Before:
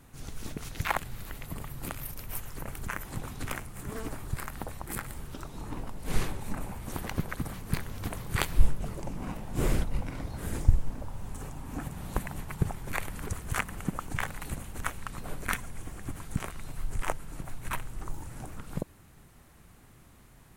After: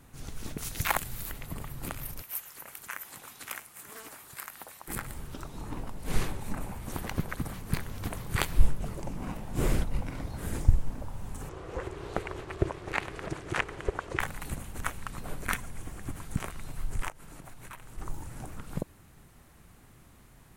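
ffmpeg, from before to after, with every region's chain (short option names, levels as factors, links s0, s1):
-filter_complex "[0:a]asettb=1/sr,asplit=3[s0][s1][s2];[s0]atrim=end=0.584[s3];[s1]atrim=start=0.58:end=1.32,asetpts=PTS-STARTPTS,afade=t=in:d=0.004:c=qsin,afade=t=out:st=0.736:d=0.004:c=qsin,highshelf=f=5600:g=12,acrusher=bits=8:mode=log:mix=0:aa=0.000001[s4];[s2]atrim=start=1.316[s5];[s3][s4]acrossfade=d=0.004:c1=hsin:c2=qsin[s6];[s6][s5]acrossfade=d=0.004:c1=qsin:c2=hsin,asettb=1/sr,asplit=3[s7][s8][s9];[s7]atrim=end=2.224[s10];[s8]atrim=start=2.22:end=4.88,asetpts=PTS-STARTPTS,afade=t=in:d=0.004:c=qsin,afade=t=out:st=2.656:d=0.004:c=qsin,highpass=f=1500:p=1,equalizer=f=13000:t=o:w=0.43:g=5.5[s11];[s9]atrim=start=4.876[s12];[s10][s11]acrossfade=d=0.004:c1=hsin:c2=qsin[s13];[s13][s12]acrossfade=d=0.004:c1=qsin:c2=hsin,asettb=1/sr,asplit=3[s14][s15][s16];[s14]atrim=end=11.494[s17];[s15]atrim=start=11.49:end=14.2,asetpts=PTS-STARTPTS,afade=t=in:d=0.004:c=qsin,afade=t=out:st=2.706:d=0.004:c=qsin,acontrast=36,highpass=110,lowpass=5000,aeval=exprs='val(0)*sin(2*PI*230*n/s)':c=same[s18];[s16]atrim=start=14.196[s19];[s17][s18]acrossfade=d=0.004:c1=hsin:c2=qsin[s20];[s20][s19]acrossfade=d=0.004:c1=qsin:c2=hsin,asettb=1/sr,asplit=3[s21][s22][s23];[s21]atrim=end=17.084[s24];[s22]atrim=start=17.08:end=17.98,asetpts=PTS-STARTPTS,afade=t=in:d=0.004:c=qsin,afade=t=out:st=0.896:d=0.004:c=qsin,lowshelf=f=140:g=-8,acompressor=threshold=0.00794:ratio=4:attack=3.2:release=140:knee=1:detection=peak[s25];[s23]atrim=start=17.976[s26];[s24][s25]acrossfade=d=0.004:c1=hsin:c2=qsin[s27];[s27][s26]acrossfade=d=0.004:c1=qsin:c2=hsin"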